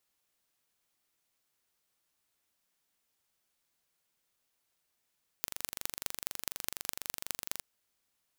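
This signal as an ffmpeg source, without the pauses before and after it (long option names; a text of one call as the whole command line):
ffmpeg -f lavfi -i "aevalsrc='0.596*eq(mod(n,1830),0)*(0.5+0.5*eq(mod(n,9150),0))':duration=2.16:sample_rate=44100" out.wav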